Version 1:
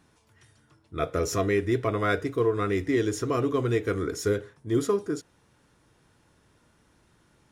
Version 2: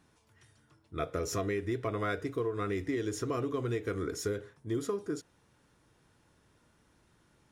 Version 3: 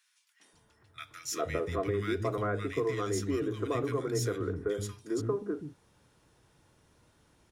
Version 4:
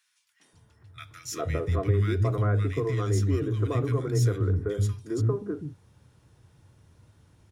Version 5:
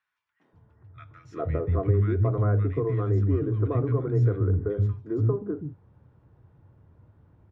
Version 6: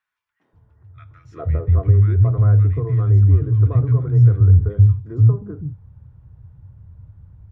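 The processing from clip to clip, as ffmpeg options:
ffmpeg -i in.wav -af "acompressor=threshold=-25dB:ratio=6,volume=-4dB" out.wav
ffmpeg -i in.wav -filter_complex "[0:a]acrossover=split=240|1600[link_01][link_02][link_03];[link_02]adelay=400[link_04];[link_01]adelay=530[link_05];[link_05][link_04][link_03]amix=inputs=3:normalize=0,volume=3dB" out.wav
ffmpeg -i in.wav -af "equalizer=frequency=99:width=1:gain=14.5" out.wav
ffmpeg -i in.wav -af "lowpass=1200,volume=1.5dB" out.wav
ffmpeg -i in.wav -af "asubboost=boost=11:cutoff=100" out.wav

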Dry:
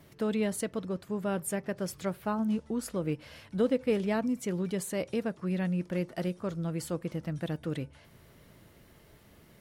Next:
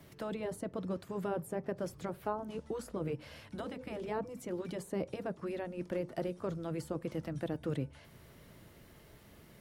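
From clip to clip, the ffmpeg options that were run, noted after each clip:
ffmpeg -i in.wav -filter_complex "[0:a]afftfilt=real='re*lt(hypot(re,im),0.224)':imag='im*lt(hypot(re,im),0.224)':win_size=1024:overlap=0.75,acrossover=split=150|1100[link_01][link_02][link_03];[link_03]acompressor=threshold=-51dB:ratio=10[link_04];[link_01][link_02][link_04]amix=inputs=3:normalize=0" out.wav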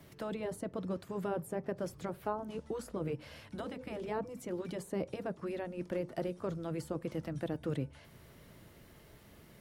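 ffmpeg -i in.wav -af anull out.wav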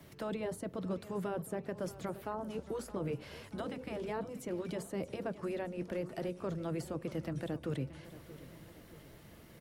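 ffmpeg -i in.wav -filter_complex "[0:a]acrossover=split=120|1600[link_01][link_02][link_03];[link_02]alimiter=level_in=6dB:limit=-24dB:level=0:latency=1,volume=-6dB[link_04];[link_01][link_04][link_03]amix=inputs=3:normalize=0,aecho=1:1:627|1254|1881|2508|3135:0.158|0.0872|0.0479|0.0264|0.0145,volume=1dB" out.wav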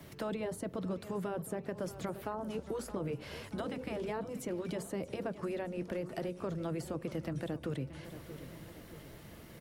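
ffmpeg -i in.wav -af "acompressor=threshold=-39dB:ratio=2.5,volume=4dB" out.wav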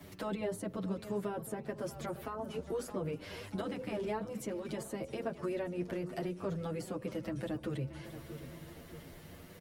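ffmpeg -i in.wav -filter_complex "[0:a]asplit=2[link_01][link_02];[link_02]adelay=8,afreqshift=0.31[link_03];[link_01][link_03]amix=inputs=2:normalize=1,volume=3dB" out.wav

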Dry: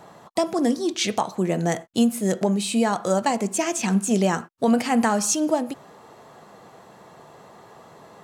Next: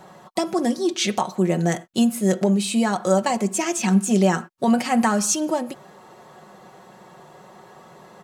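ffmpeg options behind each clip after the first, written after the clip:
ffmpeg -i in.wav -af "aecho=1:1:5.4:0.54" out.wav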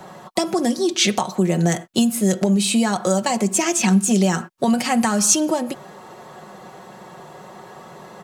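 ffmpeg -i in.wav -filter_complex "[0:a]acrossover=split=150|3000[link_01][link_02][link_03];[link_02]acompressor=threshold=-23dB:ratio=6[link_04];[link_01][link_04][link_03]amix=inputs=3:normalize=0,volume=6dB" out.wav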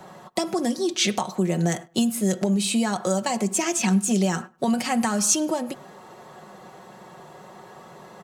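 ffmpeg -i in.wav -filter_complex "[0:a]asplit=2[link_01][link_02];[link_02]adelay=103,lowpass=frequency=2100:poles=1,volume=-23.5dB,asplit=2[link_03][link_04];[link_04]adelay=103,lowpass=frequency=2100:poles=1,volume=0.26[link_05];[link_01][link_03][link_05]amix=inputs=3:normalize=0,volume=-4.5dB" out.wav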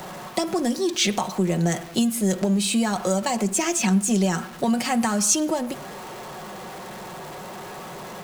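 ffmpeg -i in.wav -af "aeval=exprs='val(0)+0.5*0.0188*sgn(val(0))':channel_layout=same" out.wav

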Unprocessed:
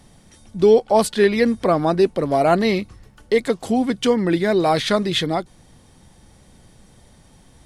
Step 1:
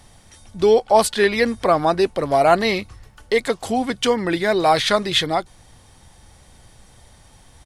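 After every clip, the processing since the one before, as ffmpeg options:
ffmpeg -i in.wav -af "firequalizer=gain_entry='entry(100,0);entry(170,-8);entry(770,1)':delay=0.05:min_phase=1,volume=2.5dB" out.wav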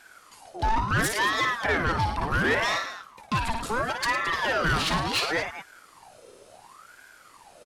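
ffmpeg -i in.wav -af "aecho=1:1:55|108|219:0.422|0.237|0.168,asoftclip=type=tanh:threshold=-15.5dB,aeval=exprs='val(0)*sin(2*PI*1000*n/s+1000*0.55/0.71*sin(2*PI*0.71*n/s))':channel_layout=same,volume=-1.5dB" out.wav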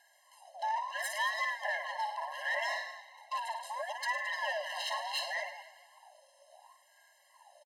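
ffmpeg -i in.wav -filter_complex "[0:a]asplit=6[link_01][link_02][link_03][link_04][link_05][link_06];[link_02]adelay=153,afreqshift=72,volume=-17.5dB[link_07];[link_03]adelay=306,afreqshift=144,volume=-22.4dB[link_08];[link_04]adelay=459,afreqshift=216,volume=-27.3dB[link_09];[link_05]adelay=612,afreqshift=288,volume=-32.1dB[link_10];[link_06]adelay=765,afreqshift=360,volume=-37dB[link_11];[link_01][link_07][link_08][link_09][link_10][link_11]amix=inputs=6:normalize=0,afftfilt=real='re*eq(mod(floor(b*sr/1024/540),2),1)':imag='im*eq(mod(floor(b*sr/1024/540),2),1)':win_size=1024:overlap=0.75,volume=-7dB" out.wav

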